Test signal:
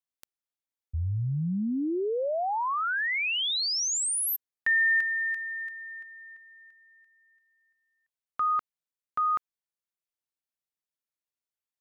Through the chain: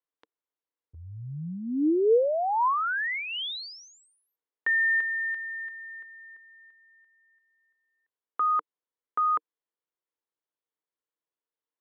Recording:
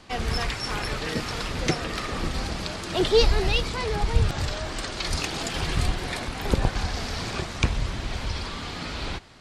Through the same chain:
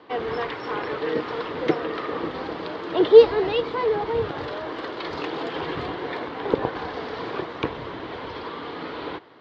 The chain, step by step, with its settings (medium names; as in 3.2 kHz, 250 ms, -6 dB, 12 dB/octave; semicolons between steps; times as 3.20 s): cabinet simulation 200–3300 Hz, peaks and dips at 210 Hz -6 dB, 310 Hz +7 dB, 460 Hz +10 dB, 1 kHz +6 dB, 2.5 kHz -7 dB